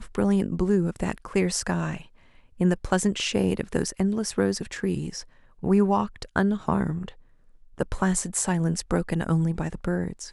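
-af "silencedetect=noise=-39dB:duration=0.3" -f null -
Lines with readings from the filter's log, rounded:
silence_start: 2.02
silence_end: 2.60 | silence_duration: 0.58
silence_start: 5.22
silence_end: 5.63 | silence_duration: 0.41
silence_start: 7.11
silence_end: 7.78 | silence_duration: 0.67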